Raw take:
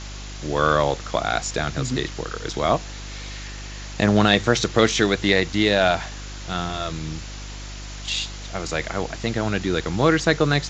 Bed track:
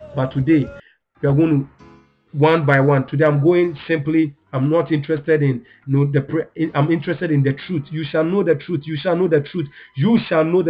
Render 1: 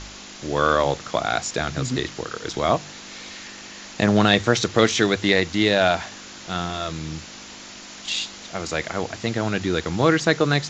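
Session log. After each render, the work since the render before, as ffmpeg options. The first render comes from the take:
-af "bandreject=f=50:t=h:w=4,bandreject=f=100:t=h:w=4,bandreject=f=150:t=h:w=4"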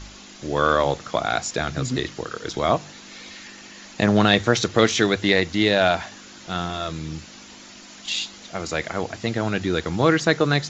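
-af "afftdn=nr=6:nf=-40"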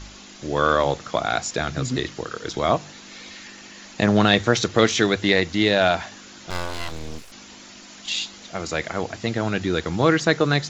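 -filter_complex "[0:a]asettb=1/sr,asplit=3[s0][s1][s2];[s0]atrim=end=6.504[s3];[s1]atrim=start=6.5:end=7.32,asetpts=PTS-STARTPTS,afade=t=in:d=0.004:c=qsin,afade=t=out:st=0.816:d=0.004:c=qsin,aeval=exprs='abs(val(0))':c=same[s4];[s2]atrim=start=7.316[s5];[s3][s4]acrossfade=d=0.004:c1=hsin:c2=qsin[s6];[s6][s5]acrossfade=d=0.004:c1=qsin:c2=hsin"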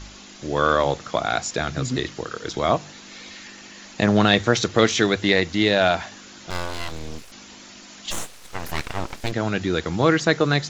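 -filter_complex "[0:a]asplit=3[s0][s1][s2];[s0]afade=t=out:st=8.1:d=0.02[s3];[s1]aeval=exprs='abs(val(0))':c=same,afade=t=in:st=8.1:d=0.02,afade=t=out:st=9.31:d=0.02[s4];[s2]afade=t=in:st=9.31:d=0.02[s5];[s3][s4][s5]amix=inputs=3:normalize=0"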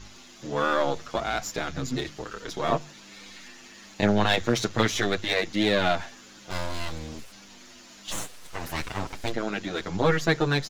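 -filter_complex "[0:a]aeval=exprs='if(lt(val(0),0),0.447*val(0),val(0))':c=same,asplit=2[s0][s1];[s1]adelay=7.9,afreqshift=-1.2[s2];[s0][s2]amix=inputs=2:normalize=1"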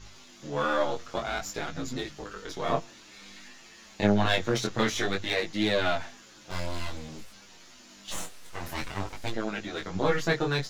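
-af "flanger=delay=18:depth=5.3:speed=0.53"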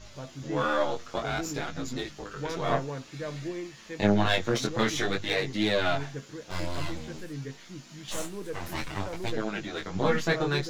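-filter_complex "[1:a]volume=0.0841[s0];[0:a][s0]amix=inputs=2:normalize=0"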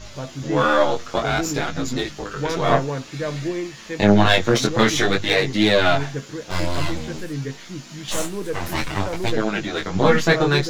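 -af "volume=2.99,alimiter=limit=0.794:level=0:latency=1"

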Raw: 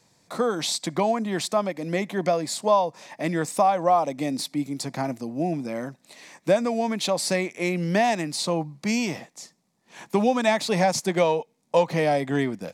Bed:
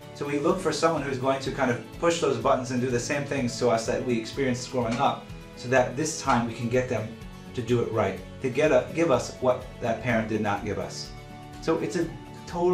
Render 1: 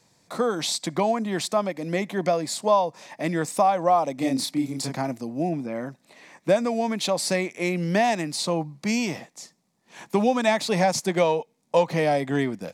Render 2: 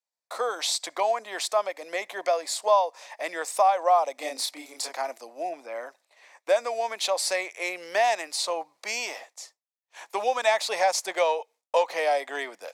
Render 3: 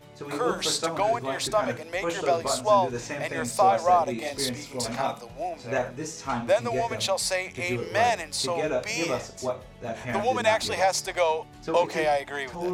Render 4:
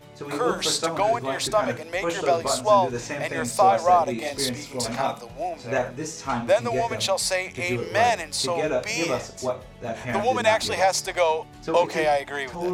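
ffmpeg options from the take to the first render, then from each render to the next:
-filter_complex "[0:a]asettb=1/sr,asplit=3[s0][s1][s2];[s0]atrim=end=4.184[s3];[s1]atrim=start=4.18:end=4.96,asetpts=PTS-STARTPTS,afade=t=in:d=0.004:c=qsin,afade=t=out:st=0.776:d=0.004:c=qsin,asplit=2[s4][s5];[s5]adelay=30,volume=0.794[s6];[s4][s6]amix=inputs=2:normalize=0,atrim=end_sample=34398[s7];[s2]atrim=start=4.956[s8];[s3][s7]acrossfade=d=0.004:c1=hsin:c2=qsin[s9];[s9][s8]acrossfade=d=0.004:c1=qsin:c2=hsin,asettb=1/sr,asplit=3[s10][s11][s12];[s10]atrim=end=5.494[s13];[s11]atrim=start=5.49:end=6.49,asetpts=PTS-STARTPTS,afade=t=in:d=0.004:c=qsin,afade=t=out:st=0.996:d=0.004:c=qsin,acrossover=split=2800[s14][s15];[s15]acompressor=threshold=0.00141:ratio=4:attack=1:release=60[s16];[s14][s16]amix=inputs=2:normalize=0[s17];[s12]atrim=start=6.486[s18];[s13][s17]acrossfade=d=0.004:c1=hsin:c2=qsin[s19];[s19][s18]acrossfade=d=0.004:c1=qsin:c2=hsin"
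-af "agate=range=0.0224:threshold=0.00631:ratio=3:detection=peak,highpass=f=530:w=0.5412,highpass=f=530:w=1.3066"
-filter_complex "[1:a]volume=0.473[s0];[0:a][s0]amix=inputs=2:normalize=0"
-af "volume=1.33"

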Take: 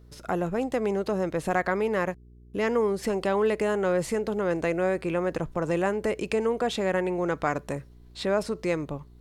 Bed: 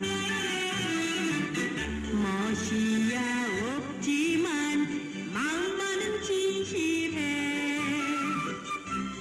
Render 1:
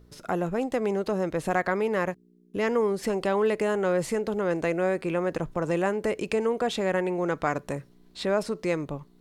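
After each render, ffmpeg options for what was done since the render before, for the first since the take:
-af "bandreject=f=60:t=h:w=4,bandreject=f=120:t=h:w=4"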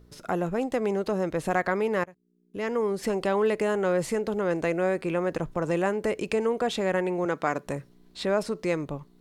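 -filter_complex "[0:a]asettb=1/sr,asplit=3[s0][s1][s2];[s0]atrim=end=7.254[s3];[s1]atrim=start=7.25:end=7.66,asetpts=PTS-STARTPTS,afade=t=in:d=0.004:c=qsin,afade=t=out:st=0.406:d=0.004:c=qsin,highpass=160[s4];[s2]atrim=start=7.656[s5];[s3][s4]acrossfade=d=0.004:c1=hsin:c2=qsin[s6];[s6][s5]acrossfade=d=0.004:c1=qsin:c2=hsin,asplit=2[s7][s8];[s7]atrim=end=2.04,asetpts=PTS-STARTPTS,afade=t=out:st=2.036:d=0.004:c=hsin:silence=0.0668344[s9];[s8]atrim=start=2.04,asetpts=PTS-STARTPTS,afade=t=in:d=1.02:silence=0.0668344[s10];[s9][s10]concat=n=2:v=0:a=1"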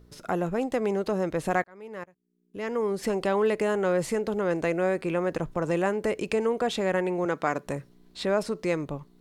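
-filter_complex "[0:a]asplit=2[s0][s1];[s0]atrim=end=1.64,asetpts=PTS-STARTPTS,afade=t=out:st=1.636:d=0.004:c=hsin[s2];[s1]atrim=start=1.64,asetpts=PTS-STARTPTS,afade=t=in:d=1.31[s3];[s2][s3]concat=n=2:v=0:a=1"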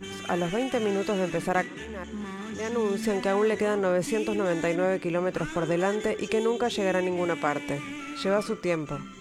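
-filter_complex "[1:a]volume=0.422[s0];[0:a][s0]amix=inputs=2:normalize=0"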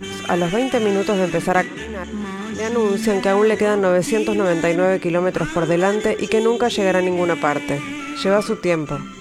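-af "volume=2.66,alimiter=limit=0.708:level=0:latency=1"

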